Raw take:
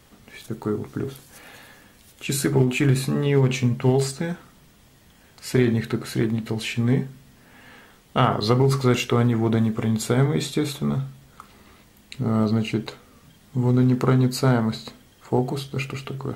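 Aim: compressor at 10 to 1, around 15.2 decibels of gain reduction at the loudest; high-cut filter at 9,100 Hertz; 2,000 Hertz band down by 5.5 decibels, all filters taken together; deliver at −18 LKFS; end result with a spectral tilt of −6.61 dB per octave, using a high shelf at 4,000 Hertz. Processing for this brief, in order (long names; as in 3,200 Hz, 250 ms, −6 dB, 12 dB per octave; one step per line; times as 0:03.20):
low-pass filter 9,100 Hz
parametric band 2,000 Hz −5.5 dB
high-shelf EQ 4,000 Hz −7 dB
downward compressor 10 to 1, threshold −30 dBFS
level +17.5 dB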